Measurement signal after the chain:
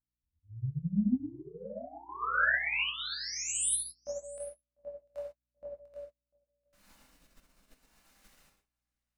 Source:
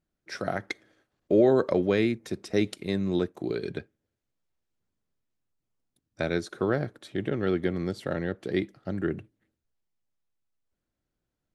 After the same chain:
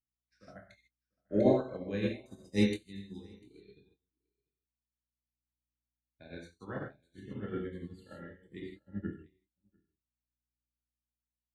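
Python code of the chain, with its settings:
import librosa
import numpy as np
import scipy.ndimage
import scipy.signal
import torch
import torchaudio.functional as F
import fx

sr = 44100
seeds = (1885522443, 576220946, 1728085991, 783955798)

y = fx.noise_reduce_blind(x, sr, reduce_db=22)
y = fx.notch(y, sr, hz=3300.0, q=13.0)
y = fx.dynamic_eq(y, sr, hz=2100.0, q=4.6, threshold_db=-48.0, ratio=4.0, max_db=-4)
y = fx.add_hum(y, sr, base_hz=60, snr_db=20)
y = fx.peak_eq(y, sr, hz=390.0, db=-10.0, octaves=0.62)
y = fx.rotary(y, sr, hz=0.7)
y = fx.doubler(y, sr, ms=24.0, db=-8.0)
y = y + 10.0 ** (-13.5 / 20.0) * np.pad(y, (int(696 * sr / 1000.0), 0))[:len(y)]
y = fx.rev_gated(y, sr, seeds[0], gate_ms=180, shape='flat', drr_db=-2.5)
y = fx.upward_expand(y, sr, threshold_db=-49.0, expansion=2.5)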